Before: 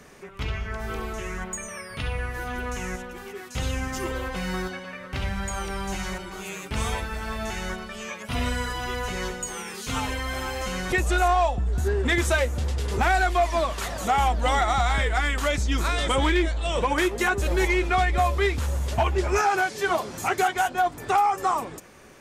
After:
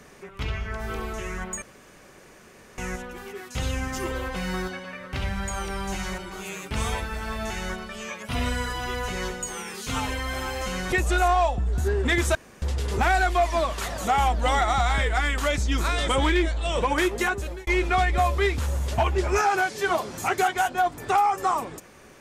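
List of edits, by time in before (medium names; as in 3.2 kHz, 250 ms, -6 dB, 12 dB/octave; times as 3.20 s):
1.62–2.78 s: room tone
12.35–12.62 s: room tone
17.19–17.67 s: fade out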